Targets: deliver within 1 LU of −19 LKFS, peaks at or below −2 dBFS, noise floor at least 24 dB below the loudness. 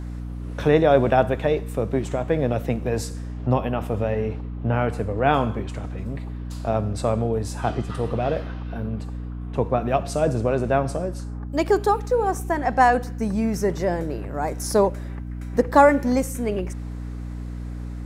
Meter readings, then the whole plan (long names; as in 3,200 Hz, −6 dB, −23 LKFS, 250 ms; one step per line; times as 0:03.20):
mains hum 60 Hz; hum harmonics up to 300 Hz; level of the hum −29 dBFS; integrated loudness −23.0 LKFS; sample peak −1.0 dBFS; target loudness −19.0 LKFS
→ mains-hum notches 60/120/180/240/300 Hz
level +4 dB
brickwall limiter −2 dBFS